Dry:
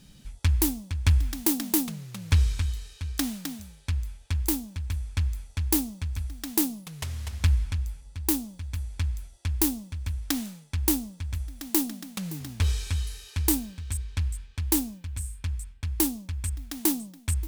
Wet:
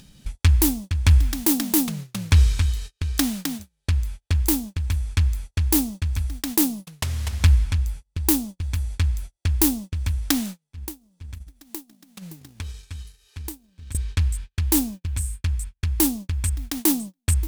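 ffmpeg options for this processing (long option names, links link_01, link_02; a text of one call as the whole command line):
ffmpeg -i in.wav -filter_complex "[0:a]asettb=1/sr,asplit=3[link_01][link_02][link_03];[link_01]atrim=end=10.634[link_04];[link_02]atrim=start=10.63:end=13.95,asetpts=PTS-STARTPTS,afade=type=in:duration=0.004:curve=qsin,afade=type=out:start_time=3.316:duration=0.004:curve=qsin,acompressor=threshold=-39dB:ratio=6:attack=3.2:release=140:knee=1:detection=peak[link_05];[link_03]atrim=start=13.946[link_06];[link_04][link_05]acrossfade=duration=0.004:curve1=hsin:curve2=qsin[link_07];[link_07][link_06]acrossfade=duration=0.004:curve1=qsin:curve2=hsin,agate=range=-40dB:threshold=-38dB:ratio=16:detection=peak,acompressor=mode=upward:threshold=-29dB:ratio=2.5,alimiter=level_in=9.5dB:limit=-1dB:release=50:level=0:latency=1,volume=-3dB" out.wav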